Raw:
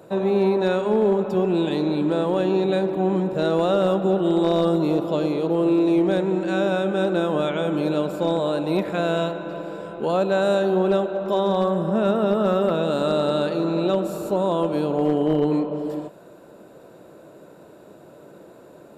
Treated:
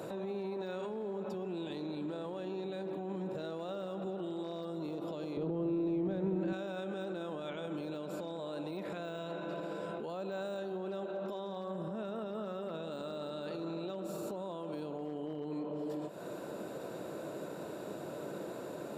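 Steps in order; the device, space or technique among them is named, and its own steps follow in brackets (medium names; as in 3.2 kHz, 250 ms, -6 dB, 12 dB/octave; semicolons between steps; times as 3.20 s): broadcast voice chain (high-pass 95 Hz; de-esser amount 85%; compression 4:1, threshold -38 dBFS, peak gain reduction 18.5 dB; peaking EQ 5 kHz +3 dB 1.7 oct; peak limiter -35.5 dBFS, peak gain reduction 10.5 dB); 5.37–6.53 s: RIAA curve playback; trim +3.5 dB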